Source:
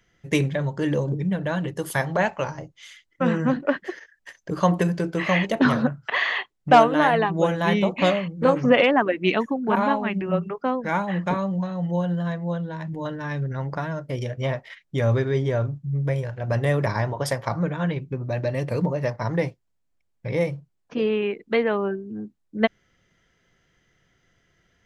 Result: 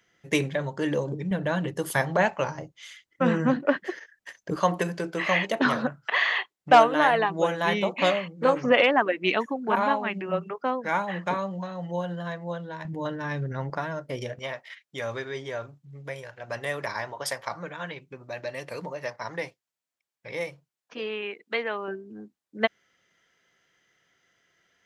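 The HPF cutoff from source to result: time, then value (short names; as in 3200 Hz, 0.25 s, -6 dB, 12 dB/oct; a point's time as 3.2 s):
HPF 6 dB/oct
320 Hz
from 1.31 s 140 Hz
from 4.56 s 490 Hz
from 12.85 s 170 Hz
from 13.7 s 340 Hz
from 14.39 s 1300 Hz
from 21.88 s 630 Hz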